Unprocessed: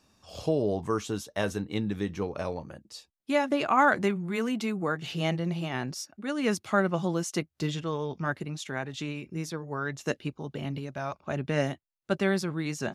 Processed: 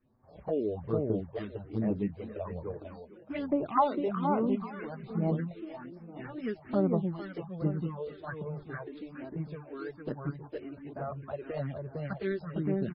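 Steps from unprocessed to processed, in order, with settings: median filter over 15 samples; distance through air 250 m; feedback delay 456 ms, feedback 34%, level -4.5 dB; phase shifter stages 4, 1.2 Hz, lowest notch 130–3700 Hz; 3.77–4.86 s: peaking EQ 1 kHz +8.5 dB 0.64 oct; 5.58–6.15 s: compression 2:1, threshold -40 dBFS, peak gain reduction 6.5 dB; touch-sensitive flanger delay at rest 8.3 ms, full sweep at -23.5 dBFS; MP3 16 kbps 22.05 kHz

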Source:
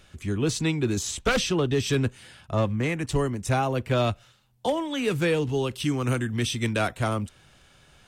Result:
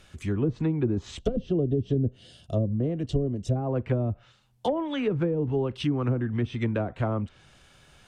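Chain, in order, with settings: low-pass that closes with the level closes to 380 Hz, closed at -19 dBFS; time-frequency box 1.19–3.56 s, 750–2700 Hz -14 dB

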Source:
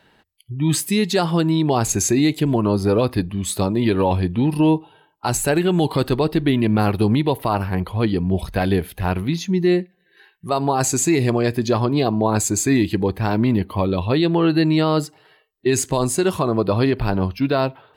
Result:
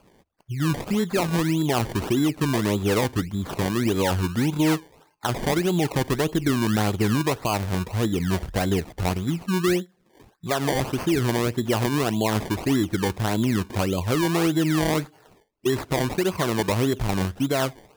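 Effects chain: high-order bell 4.6 kHz -14 dB; in parallel at +3 dB: compression, threshold -26 dBFS, peak gain reduction 13 dB; on the sum: decimation with a swept rate 23×, swing 100% 1.7 Hz; trim -7.5 dB

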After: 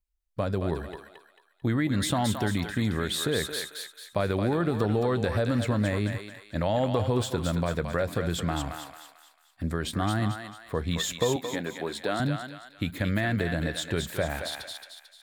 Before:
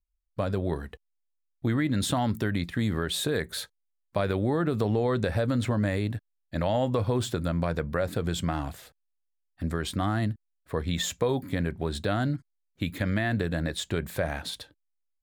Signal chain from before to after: 11.36–12.20 s: high-pass 270 Hz 12 dB/octave; thinning echo 222 ms, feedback 45%, high-pass 820 Hz, level -4 dB

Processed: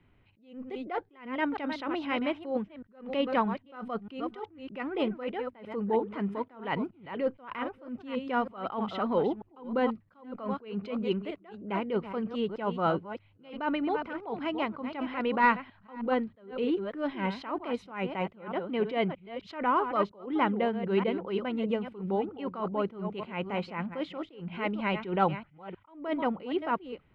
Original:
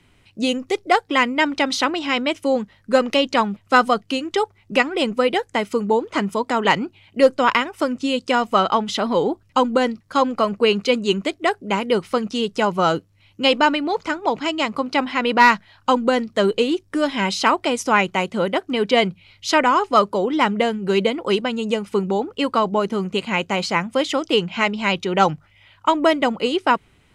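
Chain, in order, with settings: chunks repeated in reverse 314 ms, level -10.5 dB; distance through air 490 m; attacks held to a fixed rise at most 130 dB/s; trim -6.5 dB

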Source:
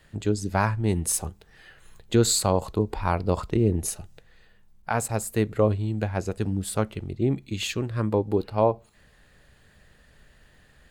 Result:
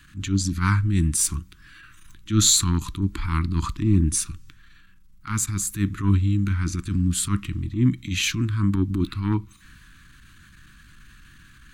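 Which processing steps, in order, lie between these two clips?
transient shaper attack -12 dB, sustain +1 dB; elliptic band-stop 330–1200 Hz, stop band 60 dB; tape speed -7%; in parallel at +1.5 dB: gain riding 2 s

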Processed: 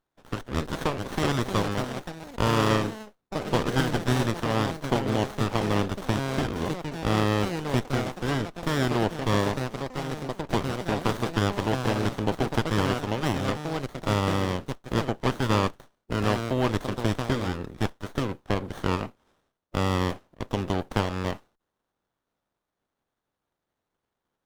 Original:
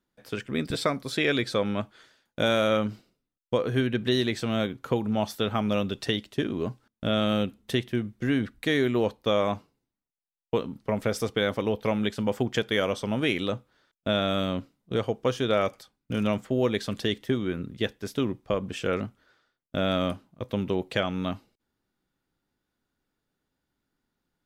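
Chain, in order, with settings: spectral peaks clipped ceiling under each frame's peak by 19 dB; ever faster or slower copies 549 ms, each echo +4 st, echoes 3, each echo -6 dB; sliding maximum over 17 samples

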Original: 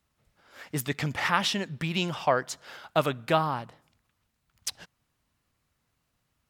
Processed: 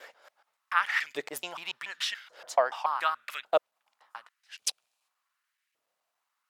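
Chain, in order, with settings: slices played last to first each 143 ms, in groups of 5; time-frequency box 4.52–5.08 s, 2.3–12 kHz +8 dB; LFO high-pass saw up 0.87 Hz 450–2200 Hz; trim -5 dB

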